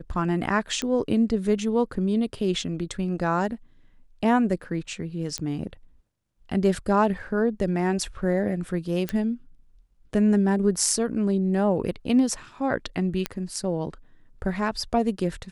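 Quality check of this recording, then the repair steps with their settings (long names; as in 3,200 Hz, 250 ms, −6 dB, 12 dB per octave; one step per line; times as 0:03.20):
0:00.82: click −14 dBFS
0:05.38: click −14 dBFS
0:09.09: click −13 dBFS
0:13.26: click −10 dBFS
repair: click removal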